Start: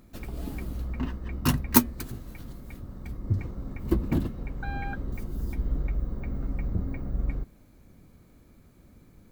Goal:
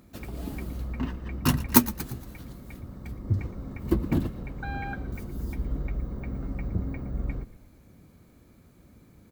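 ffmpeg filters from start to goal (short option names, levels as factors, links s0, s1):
-filter_complex "[0:a]highpass=51,asplit=5[s0][s1][s2][s3][s4];[s1]adelay=116,afreqshift=-37,volume=0.141[s5];[s2]adelay=232,afreqshift=-74,volume=0.0676[s6];[s3]adelay=348,afreqshift=-111,volume=0.0324[s7];[s4]adelay=464,afreqshift=-148,volume=0.0157[s8];[s0][s5][s6][s7][s8]amix=inputs=5:normalize=0,volume=1.12"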